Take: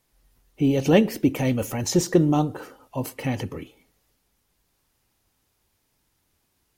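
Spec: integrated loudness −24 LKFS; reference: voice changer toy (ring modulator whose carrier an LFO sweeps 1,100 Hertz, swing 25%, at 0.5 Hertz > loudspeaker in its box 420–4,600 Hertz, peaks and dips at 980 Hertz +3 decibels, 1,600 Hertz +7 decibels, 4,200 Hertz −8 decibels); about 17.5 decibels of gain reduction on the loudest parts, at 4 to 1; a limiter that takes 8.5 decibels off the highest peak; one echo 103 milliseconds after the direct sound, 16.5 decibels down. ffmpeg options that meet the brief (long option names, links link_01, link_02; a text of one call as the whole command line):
ffmpeg -i in.wav -af "acompressor=threshold=-34dB:ratio=4,alimiter=level_in=5.5dB:limit=-24dB:level=0:latency=1,volume=-5.5dB,aecho=1:1:103:0.15,aeval=exprs='val(0)*sin(2*PI*1100*n/s+1100*0.25/0.5*sin(2*PI*0.5*n/s))':channel_layout=same,highpass=420,equalizer=frequency=980:width_type=q:width=4:gain=3,equalizer=frequency=1600:width_type=q:width=4:gain=7,equalizer=frequency=4200:width_type=q:width=4:gain=-8,lowpass=frequency=4600:width=0.5412,lowpass=frequency=4600:width=1.3066,volume=15dB" out.wav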